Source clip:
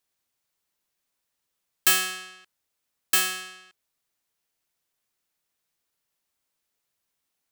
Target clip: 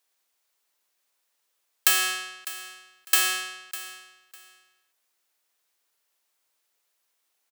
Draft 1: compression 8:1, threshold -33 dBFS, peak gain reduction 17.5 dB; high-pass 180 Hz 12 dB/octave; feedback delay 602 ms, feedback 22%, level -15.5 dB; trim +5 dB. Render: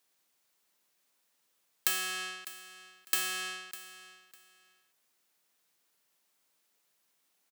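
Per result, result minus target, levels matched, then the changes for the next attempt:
compression: peak gain reduction +10.5 dB; 250 Hz band +5.0 dB
change: compression 8:1, threshold -21 dBFS, peak gain reduction 7 dB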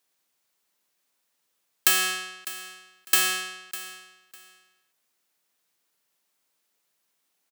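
250 Hz band +4.5 dB
change: high-pass 400 Hz 12 dB/octave

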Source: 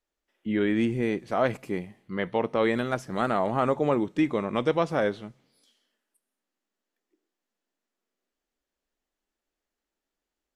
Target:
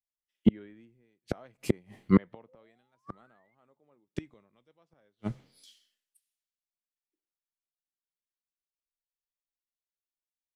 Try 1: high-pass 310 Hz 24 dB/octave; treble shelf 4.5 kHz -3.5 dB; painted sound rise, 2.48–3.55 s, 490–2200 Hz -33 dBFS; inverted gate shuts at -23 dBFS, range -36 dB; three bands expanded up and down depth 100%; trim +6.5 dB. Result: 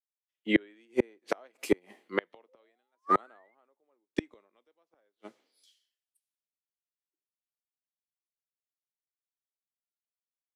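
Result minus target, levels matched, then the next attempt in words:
250 Hz band -3.5 dB
treble shelf 4.5 kHz -3.5 dB; painted sound rise, 2.48–3.55 s, 490–2200 Hz -33 dBFS; inverted gate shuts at -23 dBFS, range -36 dB; three bands expanded up and down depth 100%; trim +6.5 dB

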